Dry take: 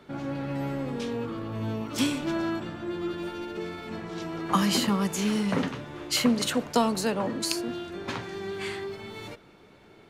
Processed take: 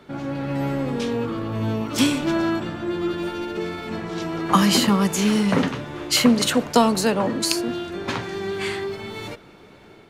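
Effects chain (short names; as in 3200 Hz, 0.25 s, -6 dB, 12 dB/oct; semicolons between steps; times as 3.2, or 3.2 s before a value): AGC gain up to 3 dB; gain +4 dB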